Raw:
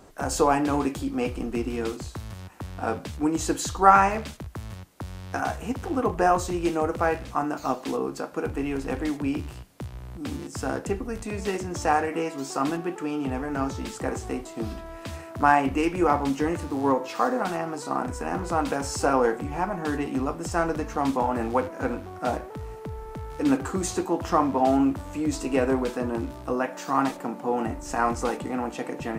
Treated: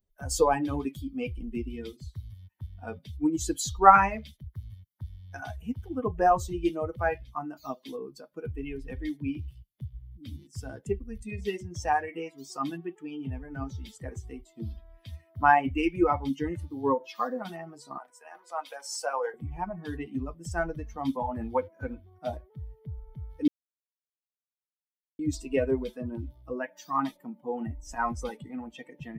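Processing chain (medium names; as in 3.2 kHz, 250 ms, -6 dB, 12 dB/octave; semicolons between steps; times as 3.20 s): expander on every frequency bin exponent 2; 17.98–19.34 s: high-pass 590 Hz 24 dB/octave; 23.48–25.19 s: mute; trim +2 dB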